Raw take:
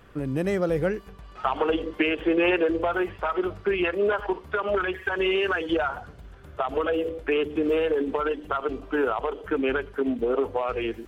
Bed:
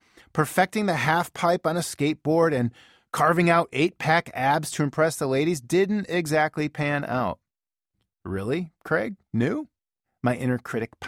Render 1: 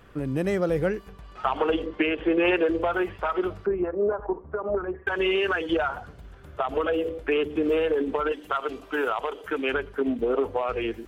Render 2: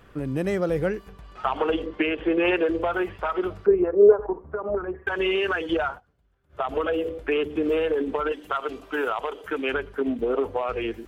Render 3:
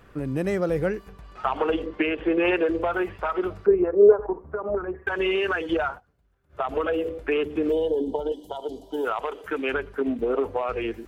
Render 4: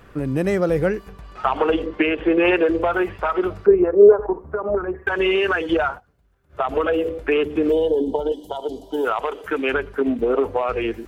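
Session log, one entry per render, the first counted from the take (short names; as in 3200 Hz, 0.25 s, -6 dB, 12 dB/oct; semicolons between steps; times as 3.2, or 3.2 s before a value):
1.86–2.45 air absorption 120 m; 3.66–5.07 Bessel low-pass 820 Hz, order 4; 8.32–9.74 tilt +2.5 dB/oct
3.68–4.26 small resonant body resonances 430/3900 Hz, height 13 dB; 5.88–6.62 dip -23 dB, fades 0.13 s
7.72–9.05 spectral gain 1000–2900 Hz -24 dB; bell 3200 Hz -4 dB 0.25 oct
gain +5 dB; limiter -3 dBFS, peak gain reduction 2.5 dB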